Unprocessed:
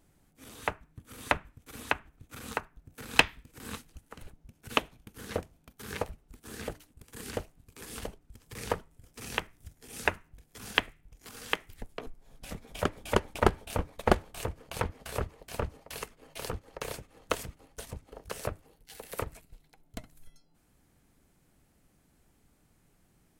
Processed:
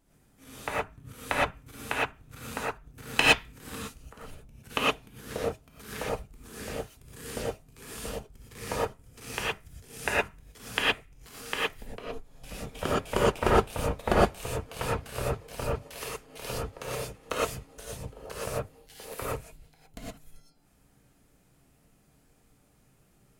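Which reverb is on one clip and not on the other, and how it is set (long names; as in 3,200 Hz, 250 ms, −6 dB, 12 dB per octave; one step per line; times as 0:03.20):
reverb whose tail is shaped and stops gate 140 ms rising, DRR −7.5 dB
level −4.5 dB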